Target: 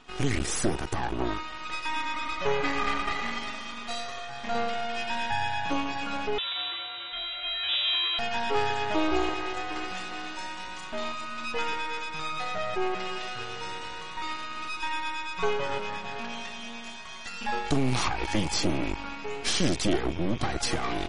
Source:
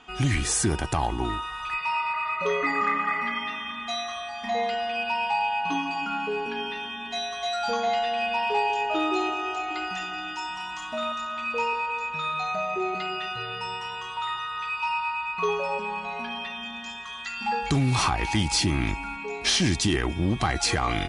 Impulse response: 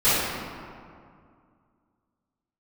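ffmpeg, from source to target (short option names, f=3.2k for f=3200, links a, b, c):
-filter_complex "[0:a]equalizer=f=320:t=o:w=1.6:g=6,aeval=exprs='max(val(0),0)':c=same,asettb=1/sr,asplit=3[a][b][c];[a]atrim=end=6.384[d];[b]atrim=start=6.38:end=8.19,asetpts=PTS-STARTPTS,afade=t=in:d=0.004:c=qsin,afade=t=out:st=1.806:d=0.004:c=qsin,lowpass=f=3.3k:t=q:w=0.5098,lowpass=f=3.3k:t=q:w=0.6013,lowpass=f=3.3k:t=q:w=0.9,lowpass=f=3.3k:t=q:w=2.563,afreqshift=-3900[e];[c]atrim=start=8.186[f];[d][e]acrossfade=d=0.004:c1=hsin:c2=qsin[g];[g][f]acrossfade=d=0.004:c1=qsin:c2=hsin" -ar 44100 -c:a libmp3lame -b:a 40k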